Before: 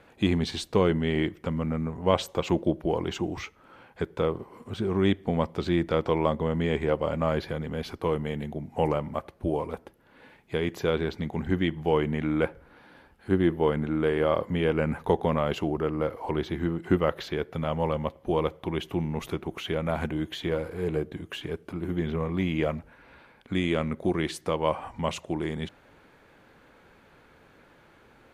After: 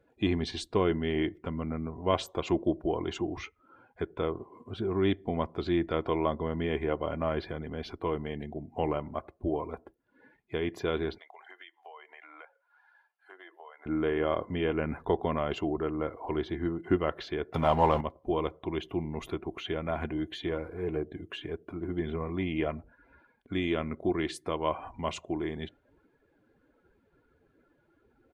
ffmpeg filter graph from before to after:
ffmpeg -i in.wav -filter_complex "[0:a]asettb=1/sr,asplit=3[link_01][link_02][link_03];[link_01]atrim=end=11.184[link_04];[link_02]atrim=start=11.18:end=13.86,asetpts=PTS-STARTPTS,afade=type=in:duration=0.004:curve=qsin,afade=type=out:start_time=2.676:duration=0.004:curve=qsin,highpass=frequency=660:width=0.5412,highpass=frequency=660:width=1.3066,acompressor=threshold=-41dB:ratio=6:attack=3.2:release=140:knee=1:detection=peak[link_05];[link_03]atrim=start=13.856[link_06];[link_04][link_05]acrossfade=duration=0.004:curve1=hsin:curve2=qsin[link_07];[link_07][link_06]acrossfade=duration=0.004:curve1=qsin:curve2=hsin,asettb=1/sr,asplit=3[link_08][link_09][link_10];[link_08]atrim=end=17.544[link_11];[link_09]atrim=start=17.54:end=18.01,asetpts=PTS-STARTPTS,afade=type=in:duration=0.004:curve=qsin,afade=type=out:start_time=0.466:duration=0.004:curve=qsin,aeval=exprs='val(0)+0.5*0.0133*sgn(val(0))':channel_layout=same,equalizer=frequency=870:width=2.4:gain=9,acontrast=28[link_12];[link_10]atrim=start=18.006[link_13];[link_11][link_12]acrossfade=duration=0.004:curve1=hsin:curve2=qsin[link_14];[link_14][link_13]acrossfade=duration=0.004:curve1=qsin:curve2=hsin,afftdn=noise_reduction=18:noise_floor=-49,aecho=1:1:2.9:0.37,volume=-4dB" out.wav

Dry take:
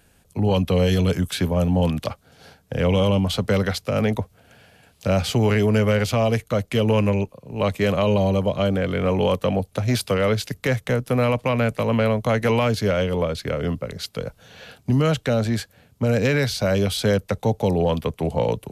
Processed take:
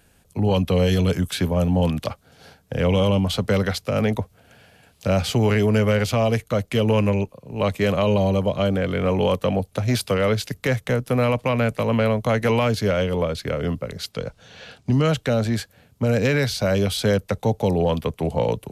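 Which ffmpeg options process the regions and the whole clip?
ffmpeg -i in.wav -filter_complex "[0:a]asettb=1/sr,asplit=3[link_01][link_02][link_03];[link_01]atrim=end=14.124[link_04];[link_02]atrim=start=14.12:end=15.08,asetpts=PTS-STARTPTS,afade=type=in:duration=0.004:curve=qsin,afade=type=out:start_time=0.956:duration=0.004:curve=qsin,lowpass=6300,highshelf=frequency=4900:gain=6[link_05];[link_03]atrim=start=15.076[link_06];[link_04][link_05]acrossfade=duration=0.004:curve1=hsin:curve2=qsin[link_07];[link_07][link_06]acrossfade=duration=0.004:curve1=qsin:curve2=hsin" out.wav

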